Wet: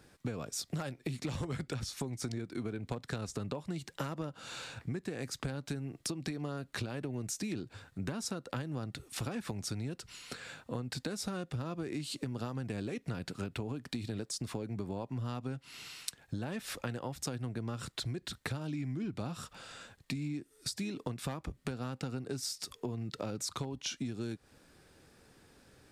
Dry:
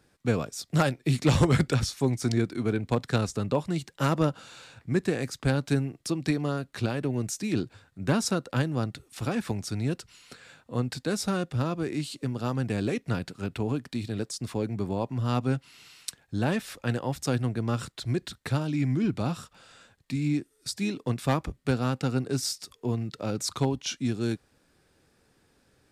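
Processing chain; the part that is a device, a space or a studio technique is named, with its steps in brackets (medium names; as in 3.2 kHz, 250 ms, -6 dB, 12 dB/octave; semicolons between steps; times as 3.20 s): serial compression, peaks first (compression, threshold -32 dBFS, peak gain reduction 14.5 dB; compression 3:1, threshold -40 dBFS, peak gain reduction 8.5 dB); trim +4 dB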